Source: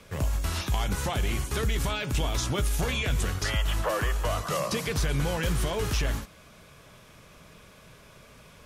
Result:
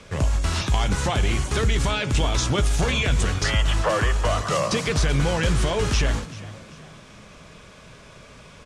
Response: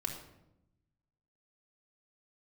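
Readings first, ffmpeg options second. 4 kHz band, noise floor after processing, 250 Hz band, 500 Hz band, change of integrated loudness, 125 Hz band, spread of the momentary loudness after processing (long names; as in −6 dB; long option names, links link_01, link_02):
+6.0 dB, −46 dBFS, +6.5 dB, +6.0 dB, +6.0 dB, +6.0 dB, 3 LU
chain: -filter_complex "[0:a]lowpass=frequency=8800:width=0.5412,lowpass=frequency=8800:width=1.3066,asplit=2[link_01][link_02];[link_02]asplit=3[link_03][link_04][link_05];[link_03]adelay=388,afreqshift=52,volume=-17.5dB[link_06];[link_04]adelay=776,afreqshift=104,volume=-26.1dB[link_07];[link_05]adelay=1164,afreqshift=156,volume=-34.8dB[link_08];[link_06][link_07][link_08]amix=inputs=3:normalize=0[link_09];[link_01][link_09]amix=inputs=2:normalize=0,volume=6dB"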